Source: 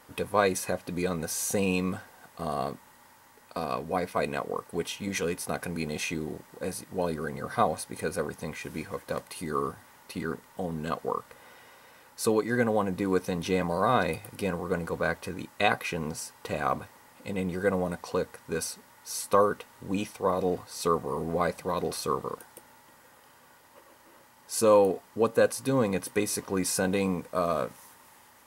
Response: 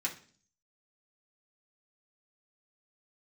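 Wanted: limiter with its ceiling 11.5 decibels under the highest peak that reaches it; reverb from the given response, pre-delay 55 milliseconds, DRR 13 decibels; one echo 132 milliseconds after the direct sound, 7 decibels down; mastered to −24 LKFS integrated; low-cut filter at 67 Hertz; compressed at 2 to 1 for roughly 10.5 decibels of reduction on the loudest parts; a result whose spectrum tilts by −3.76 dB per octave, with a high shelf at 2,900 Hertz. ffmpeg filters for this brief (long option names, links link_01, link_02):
-filter_complex "[0:a]highpass=67,highshelf=frequency=2900:gain=4,acompressor=threshold=-36dB:ratio=2,alimiter=level_in=2dB:limit=-24dB:level=0:latency=1,volume=-2dB,aecho=1:1:132:0.447,asplit=2[link_01][link_02];[1:a]atrim=start_sample=2205,adelay=55[link_03];[link_02][link_03]afir=irnorm=-1:irlink=0,volume=-16.5dB[link_04];[link_01][link_04]amix=inputs=2:normalize=0,volume=13dB"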